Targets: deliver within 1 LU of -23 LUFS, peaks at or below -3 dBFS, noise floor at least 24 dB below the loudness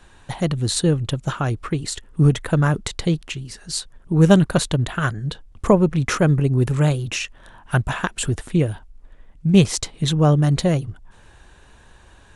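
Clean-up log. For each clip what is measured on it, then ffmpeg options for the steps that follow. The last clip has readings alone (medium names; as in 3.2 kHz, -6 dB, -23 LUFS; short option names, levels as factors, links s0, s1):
loudness -20.5 LUFS; peak level -1.5 dBFS; loudness target -23.0 LUFS
-> -af "volume=0.75"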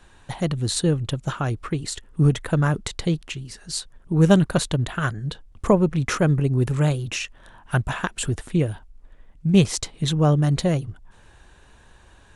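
loudness -23.0 LUFS; peak level -4.0 dBFS; noise floor -52 dBFS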